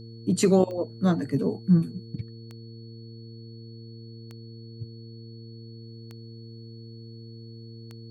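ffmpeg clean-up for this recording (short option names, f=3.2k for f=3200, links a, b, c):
-af "adeclick=t=4,bandreject=f=114.4:t=h:w=4,bandreject=f=228.8:t=h:w=4,bandreject=f=343.2:t=h:w=4,bandreject=f=457.6:t=h:w=4,bandreject=f=4.4k:w=30"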